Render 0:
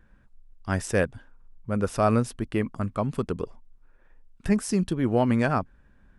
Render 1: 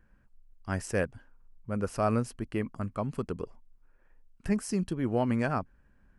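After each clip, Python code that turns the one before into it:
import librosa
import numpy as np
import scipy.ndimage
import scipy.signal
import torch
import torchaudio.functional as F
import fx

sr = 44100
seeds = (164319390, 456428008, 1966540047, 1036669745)

y = fx.notch(x, sr, hz=3600.0, q=6.3)
y = y * librosa.db_to_amplitude(-5.5)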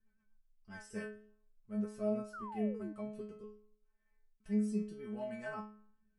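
y = fx.stiff_resonator(x, sr, f0_hz=210.0, decay_s=0.57, stiffness=0.002)
y = fx.rotary_switch(y, sr, hz=8.0, then_hz=0.8, switch_at_s=0.4)
y = fx.spec_paint(y, sr, seeds[0], shape='fall', start_s=2.33, length_s=0.6, low_hz=290.0, high_hz=1500.0, level_db=-51.0)
y = y * librosa.db_to_amplitude(5.0)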